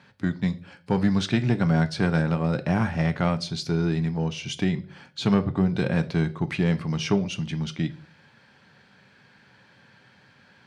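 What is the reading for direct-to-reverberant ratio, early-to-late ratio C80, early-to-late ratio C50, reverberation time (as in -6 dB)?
9.5 dB, 23.0 dB, 17.5 dB, 0.45 s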